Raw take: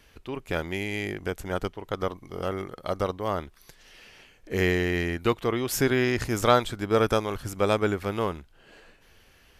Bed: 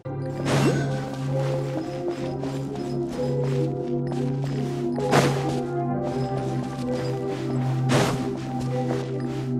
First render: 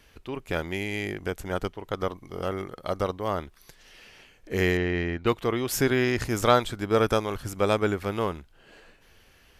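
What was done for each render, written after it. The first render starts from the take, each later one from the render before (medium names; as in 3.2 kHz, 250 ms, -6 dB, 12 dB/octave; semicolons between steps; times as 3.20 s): 4.77–5.27 s: distance through air 170 m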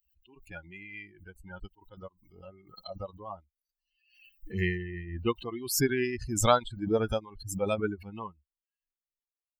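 expander on every frequency bin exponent 3; swell ahead of each attack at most 79 dB/s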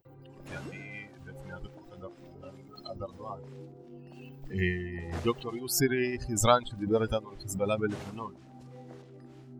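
add bed -22.5 dB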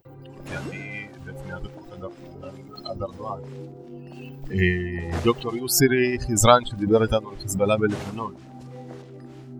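trim +8.5 dB; peak limiter -2 dBFS, peak gain reduction 1 dB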